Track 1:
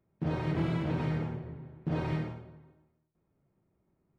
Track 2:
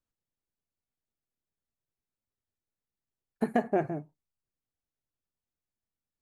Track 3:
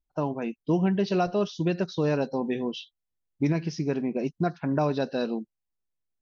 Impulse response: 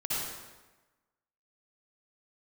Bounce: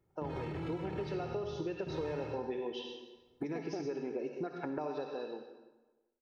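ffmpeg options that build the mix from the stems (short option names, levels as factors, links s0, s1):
-filter_complex "[0:a]alimiter=level_in=2.11:limit=0.0631:level=0:latency=1:release=13,volume=0.473,volume=1[s0];[1:a]volume=0.422[s1];[2:a]highpass=300,dynaudnorm=f=480:g=5:m=2.51,volume=0.376,afade=t=out:st=4.85:d=0.27:silence=0.354813,asplit=2[s2][s3];[s3]volume=0.158[s4];[s1][s2]amix=inputs=2:normalize=0,highshelf=f=2500:g=-12,acompressor=threshold=0.0316:ratio=6,volume=1[s5];[3:a]atrim=start_sample=2205[s6];[s4][s6]afir=irnorm=-1:irlink=0[s7];[s0][s5][s7]amix=inputs=3:normalize=0,aecho=1:1:2.3:0.44,acompressor=threshold=0.0158:ratio=3"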